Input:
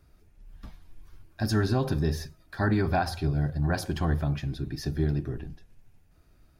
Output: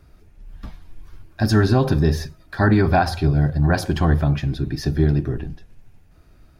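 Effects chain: high shelf 5700 Hz -5.5 dB; gain +9 dB

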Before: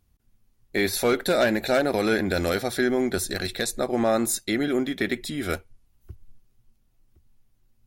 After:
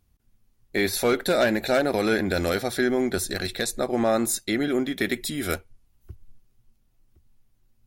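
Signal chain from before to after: 4.97–5.54 high shelf 6500 Hz +9.5 dB

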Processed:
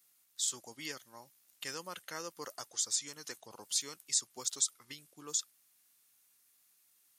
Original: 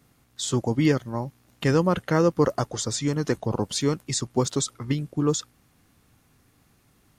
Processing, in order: differentiator; gain -1.5 dB

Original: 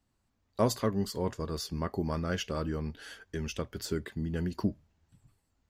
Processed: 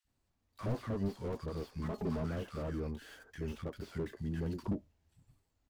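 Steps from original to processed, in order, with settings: switching dead time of 0.063 ms; 1.79–2.2 comb 4.7 ms, depth 79%; three bands offset in time highs, lows, mids 40/70 ms, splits 200/1300 Hz; slew limiter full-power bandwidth 11 Hz; gain -2.5 dB

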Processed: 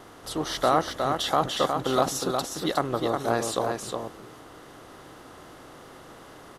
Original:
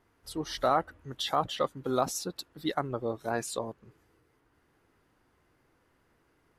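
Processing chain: per-bin compression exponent 0.6; wow and flutter 17 cents; echo 0.362 s -5 dB; gain +2 dB

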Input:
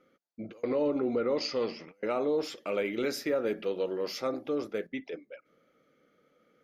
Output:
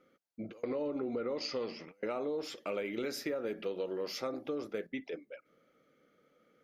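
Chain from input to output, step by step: compressor, threshold -31 dBFS, peak gain reduction 7 dB; gain -1.5 dB

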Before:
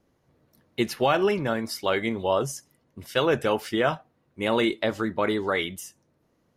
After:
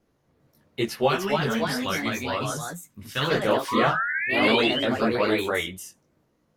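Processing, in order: 1.07–3.31 band shelf 500 Hz -8 dB; 3.68–4.85 painted sound rise 950–3300 Hz -29 dBFS; chorus voices 4, 0.82 Hz, delay 18 ms, depth 5 ms; echoes that change speed 0.398 s, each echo +2 st, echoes 2; gain +2.5 dB

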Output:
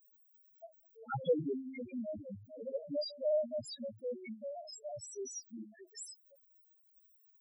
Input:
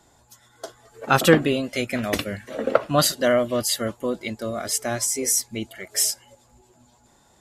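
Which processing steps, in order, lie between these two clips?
de-hum 53.04 Hz, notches 12; added noise violet -38 dBFS; loudest bins only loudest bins 1; gain -6 dB

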